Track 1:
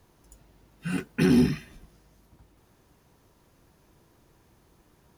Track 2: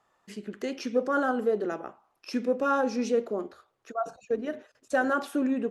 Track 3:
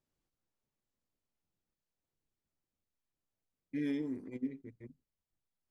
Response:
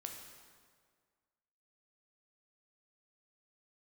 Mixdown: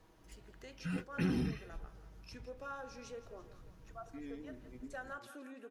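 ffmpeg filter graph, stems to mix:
-filter_complex "[0:a]highshelf=frequency=7400:gain=-10.5,aecho=1:1:6.3:0.52,asubboost=boost=6:cutoff=170,volume=-3.5dB[link_01];[1:a]highpass=frequency=1000:poles=1,volume=-13dB,asplit=2[link_02][link_03];[link_03]volume=-15dB[link_04];[2:a]adelay=400,volume=-10dB[link_05];[link_04]aecho=0:1:168|336|504|672|840|1008|1176|1344:1|0.55|0.303|0.166|0.0915|0.0503|0.0277|0.0152[link_06];[link_01][link_02][link_05][link_06]amix=inputs=4:normalize=0,equalizer=frequency=150:width=6.5:gain=-12.5,acompressor=threshold=-46dB:ratio=1.5"

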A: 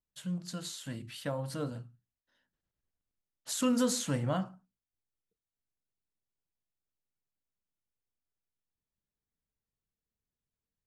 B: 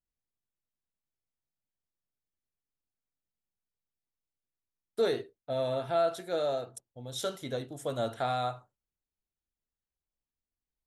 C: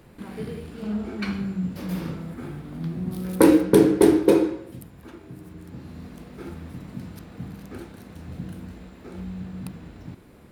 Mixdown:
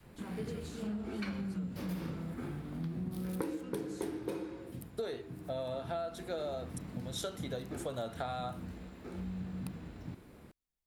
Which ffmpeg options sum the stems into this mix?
ffmpeg -i stem1.wav -i stem2.wav -i stem3.wav -filter_complex "[0:a]volume=-12.5dB[link_01];[1:a]volume=-1.5dB[link_02];[2:a]adynamicequalizer=threshold=0.0355:dfrequency=380:dqfactor=0.94:tfrequency=380:tqfactor=0.94:attack=5:release=100:ratio=0.375:range=3:mode=cutabove:tftype=bell,volume=-5dB[link_03];[link_01][link_02][link_03]amix=inputs=3:normalize=0,acompressor=threshold=-34dB:ratio=16" out.wav

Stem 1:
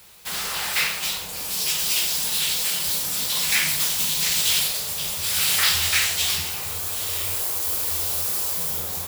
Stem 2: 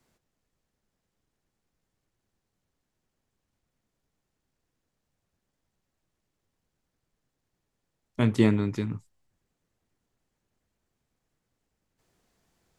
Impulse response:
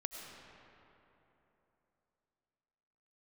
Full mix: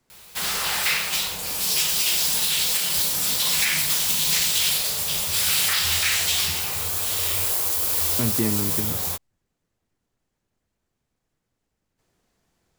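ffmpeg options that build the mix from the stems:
-filter_complex "[0:a]adelay=100,volume=2.5dB[link_01];[1:a]acontrast=69,volume=-5.5dB[link_02];[link_01][link_02]amix=inputs=2:normalize=0,alimiter=limit=-10.5dB:level=0:latency=1:release=178"

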